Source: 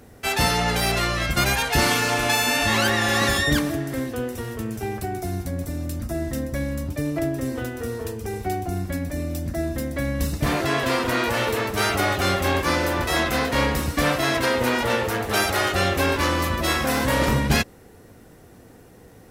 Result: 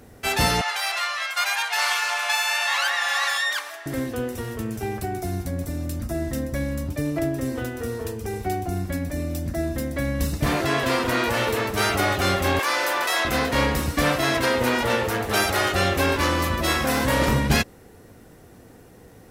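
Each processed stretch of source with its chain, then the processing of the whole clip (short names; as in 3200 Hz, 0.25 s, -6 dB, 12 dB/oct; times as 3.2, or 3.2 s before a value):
0.61–3.86 inverse Chebyshev high-pass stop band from 180 Hz, stop band 70 dB + high shelf 8100 Hz -8 dB
12.59–13.25 HPF 690 Hz + fast leveller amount 70%
whole clip: dry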